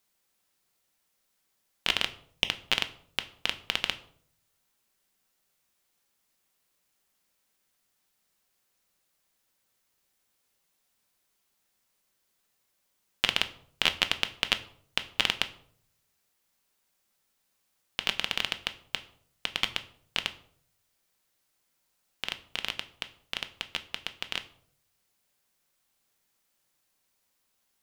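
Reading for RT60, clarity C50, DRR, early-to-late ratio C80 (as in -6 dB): 0.60 s, 16.5 dB, 8.5 dB, 19.0 dB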